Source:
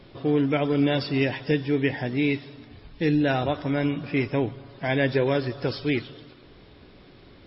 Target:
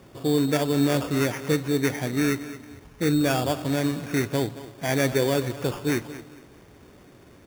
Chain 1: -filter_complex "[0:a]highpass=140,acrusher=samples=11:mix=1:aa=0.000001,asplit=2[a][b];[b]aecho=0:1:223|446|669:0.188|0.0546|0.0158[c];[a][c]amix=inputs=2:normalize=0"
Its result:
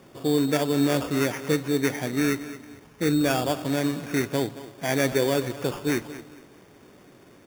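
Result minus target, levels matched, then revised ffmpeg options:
125 Hz band -2.5 dB
-filter_complex "[0:a]highpass=54,acrusher=samples=11:mix=1:aa=0.000001,asplit=2[a][b];[b]aecho=0:1:223|446|669:0.188|0.0546|0.0158[c];[a][c]amix=inputs=2:normalize=0"

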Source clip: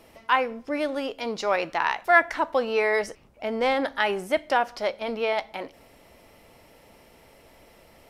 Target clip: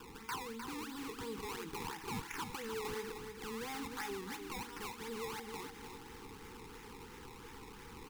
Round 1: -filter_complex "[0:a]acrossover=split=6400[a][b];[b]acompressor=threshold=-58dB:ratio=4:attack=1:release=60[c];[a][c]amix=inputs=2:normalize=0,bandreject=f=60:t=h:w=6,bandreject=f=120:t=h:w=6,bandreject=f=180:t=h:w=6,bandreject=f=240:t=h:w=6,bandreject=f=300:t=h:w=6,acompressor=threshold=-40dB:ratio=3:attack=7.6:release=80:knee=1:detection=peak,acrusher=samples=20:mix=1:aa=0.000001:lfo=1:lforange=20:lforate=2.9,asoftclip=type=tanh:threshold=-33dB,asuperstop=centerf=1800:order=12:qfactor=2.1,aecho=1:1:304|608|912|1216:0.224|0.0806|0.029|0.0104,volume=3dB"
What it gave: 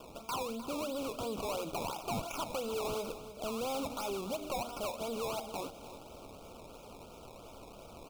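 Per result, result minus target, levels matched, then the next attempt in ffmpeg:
2000 Hz band -8.0 dB; compressor: peak gain reduction -6.5 dB; echo-to-direct -6 dB
-filter_complex "[0:a]acrossover=split=6400[a][b];[b]acompressor=threshold=-58dB:ratio=4:attack=1:release=60[c];[a][c]amix=inputs=2:normalize=0,bandreject=f=60:t=h:w=6,bandreject=f=120:t=h:w=6,bandreject=f=180:t=h:w=6,bandreject=f=240:t=h:w=6,bandreject=f=300:t=h:w=6,acompressor=threshold=-40dB:ratio=3:attack=7.6:release=80:knee=1:detection=peak,acrusher=samples=20:mix=1:aa=0.000001:lfo=1:lforange=20:lforate=2.9,asoftclip=type=tanh:threshold=-33dB,asuperstop=centerf=620:order=12:qfactor=2.1,aecho=1:1:304|608|912|1216:0.224|0.0806|0.029|0.0104,volume=3dB"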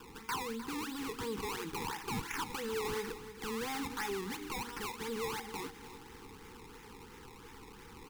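compressor: peak gain reduction -6.5 dB; echo-to-direct -6 dB
-filter_complex "[0:a]acrossover=split=6400[a][b];[b]acompressor=threshold=-58dB:ratio=4:attack=1:release=60[c];[a][c]amix=inputs=2:normalize=0,bandreject=f=60:t=h:w=6,bandreject=f=120:t=h:w=6,bandreject=f=180:t=h:w=6,bandreject=f=240:t=h:w=6,bandreject=f=300:t=h:w=6,acompressor=threshold=-49.5dB:ratio=3:attack=7.6:release=80:knee=1:detection=peak,acrusher=samples=20:mix=1:aa=0.000001:lfo=1:lforange=20:lforate=2.9,asoftclip=type=tanh:threshold=-33dB,asuperstop=centerf=620:order=12:qfactor=2.1,aecho=1:1:304|608|912|1216:0.224|0.0806|0.029|0.0104,volume=3dB"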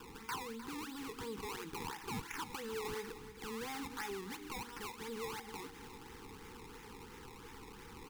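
echo-to-direct -6 dB
-filter_complex "[0:a]acrossover=split=6400[a][b];[b]acompressor=threshold=-58dB:ratio=4:attack=1:release=60[c];[a][c]amix=inputs=2:normalize=0,bandreject=f=60:t=h:w=6,bandreject=f=120:t=h:w=6,bandreject=f=180:t=h:w=6,bandreject=f=240:t=h:w=6,bandreject=f=300:t=h:w=6,acompressor=threshold=-49.5dB:ratio=3:attack=7.6:release=80:knee=1:detection=peak,acrusher=samples=20:mix=1:aa=0.000001:lfo=1:lforange=20:lforate=2.9,asoftclip=type=tanh:threshold=-33dB,asuperstop=centerf=620:order=12:qfactor=2.1,aecho=1:1:304|608|912|1216:0.447|0.161|0.0579|0.0208,volume=3dB"

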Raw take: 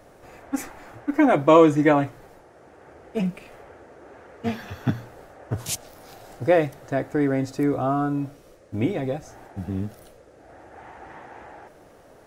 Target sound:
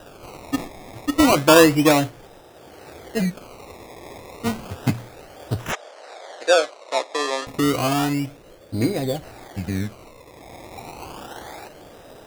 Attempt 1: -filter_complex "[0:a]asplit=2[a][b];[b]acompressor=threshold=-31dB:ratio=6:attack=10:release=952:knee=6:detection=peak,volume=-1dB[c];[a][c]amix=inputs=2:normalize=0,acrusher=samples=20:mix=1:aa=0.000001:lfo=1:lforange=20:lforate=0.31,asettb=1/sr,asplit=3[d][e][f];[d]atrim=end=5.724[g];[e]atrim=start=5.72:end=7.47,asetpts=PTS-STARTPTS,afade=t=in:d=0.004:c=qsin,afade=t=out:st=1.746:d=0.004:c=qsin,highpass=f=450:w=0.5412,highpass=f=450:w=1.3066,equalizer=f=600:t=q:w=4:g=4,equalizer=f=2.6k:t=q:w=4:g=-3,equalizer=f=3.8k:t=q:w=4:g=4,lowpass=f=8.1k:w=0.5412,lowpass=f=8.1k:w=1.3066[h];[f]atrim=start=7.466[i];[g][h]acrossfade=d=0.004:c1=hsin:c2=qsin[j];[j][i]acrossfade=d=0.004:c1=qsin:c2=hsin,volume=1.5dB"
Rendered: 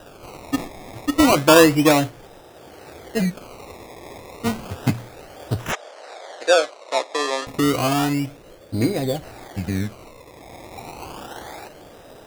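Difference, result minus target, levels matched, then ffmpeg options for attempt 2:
compressor: peak gain reduction -6 dB
-filter_complex "[0:a]asplit=2[a][b];[b]acompressor=threshold=-38.5dB:ratio=6:attack=10:release=952:knee=6:detection=peak,volume=-1dB[c];[a][c]amix=inputs=2:normalize=0,acrusher=samples=20:mix=1:aa=0.000001:lfo=1:lforange=20:lforate=0.31,asettb=1/sr,asplit=3[d][e][f];[d]atrim=end=5.724[g];[e]atrim=start=5.72:end=7.47,asetpts=PTS-STARTPTS,afade=t=in:d=0.004:c=qsin,afade=t=out:st=1.746:d=0.004:c=qsin,highpass=f=450:w=0.5412,highpass=f=450:w=1.3066,equalizer=f=600:t=q:w=4:g=4,equalizer=f=2.6k:t=q:w=4:g=-3,equalizer=f=3.8k:t=q:w=4:g=4,lowpass=f=8.1k:w=0.5412,lowpass=f=8.1k:w=1.3066[h];[f]atrim=start=7.466[i];[g][h]acrossfade=d=0.004:c1=hsin:c2=qsin[j];[j][i]acrossfade=d=0.004:c1=qsin:c2=hsin,volume=1.5dB"

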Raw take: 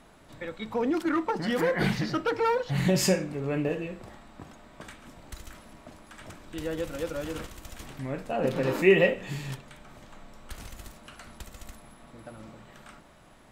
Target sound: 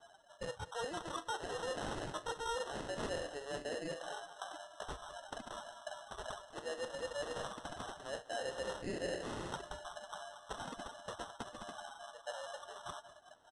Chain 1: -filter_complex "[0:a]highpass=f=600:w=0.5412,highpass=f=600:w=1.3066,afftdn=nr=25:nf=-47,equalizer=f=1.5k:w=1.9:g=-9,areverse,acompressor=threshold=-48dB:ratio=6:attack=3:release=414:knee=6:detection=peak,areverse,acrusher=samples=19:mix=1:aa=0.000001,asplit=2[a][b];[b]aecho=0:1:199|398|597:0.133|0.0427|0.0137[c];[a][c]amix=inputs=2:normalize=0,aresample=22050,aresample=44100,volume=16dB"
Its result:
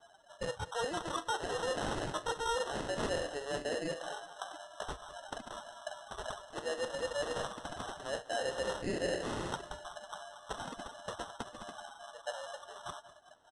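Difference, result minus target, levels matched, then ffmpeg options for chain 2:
compressor: peak gain reduction -5 dB
-filter_complex "[0:a]highpass=f=600:w=0.5412,highpass=f=600:w=1.3066,afftdn=nr=25:nf=-47,equalizer=f=1.5k:w=1.9:g=-9,areverse,acompressor=threshold=-54dB:ratio=6:attack=3:release=414:knee=6:detection=peak,areverse,acrusher=samples=19:mix=1:aa=0.000001,asplit=2[a][b];[b]aecho=0:1:199|398|597:0.133|0.0427|0.0137[c];[a][c]amix=inputs=2:normalize=0,aresample=22050,aresample=44100,volume=16dB"

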